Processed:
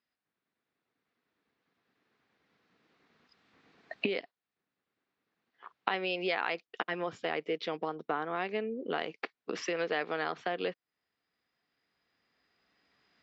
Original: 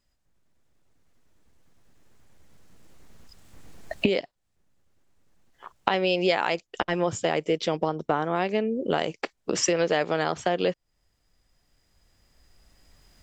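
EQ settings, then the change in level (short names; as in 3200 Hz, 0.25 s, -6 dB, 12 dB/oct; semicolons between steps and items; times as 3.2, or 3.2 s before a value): speaker cabinet 310–4000 Hz, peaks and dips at 350 Hz -4 dB, 580 Hz -9 dB, 880 Hz -5 dB, 3100 Hz -4 dB; -4.0 dB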